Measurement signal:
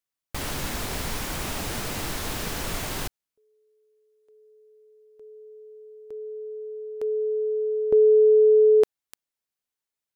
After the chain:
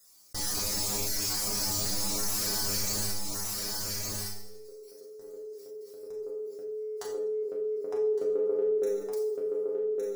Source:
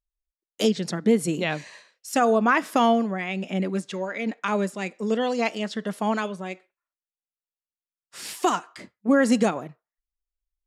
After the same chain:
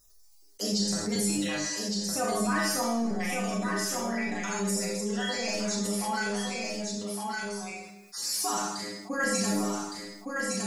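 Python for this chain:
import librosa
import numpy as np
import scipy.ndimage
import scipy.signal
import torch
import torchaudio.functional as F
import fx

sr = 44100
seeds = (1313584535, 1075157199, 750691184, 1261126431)

y = fx.spec_dropout(x, sr, seeds[0], share_pct=28)
y = fx.high_shelf_res(y, sr, hz=4000.0, db=7.5, q=3.0)
y = fx.transient(y, sr, attack_db=-2, sustain_db=11)
y = fx.stiff_resonator(y, sr, f0_hz=100.0, decay_s=0.35, stiffness=0.002)
y = y + 10.0 ** (-7.0 / 20.0) * np.pad(y, (int(1162 * sr / 1000.0), 0))[:len(y)]
y = fx.rev_schroeder(y, sr, rt60_s=0.55, comb_ms=27, drr_db=-2.0)
y = fx.env_flatten(y, sr, amount_pct=50)
y = y * librosa.db_to_amplitude(-2.5)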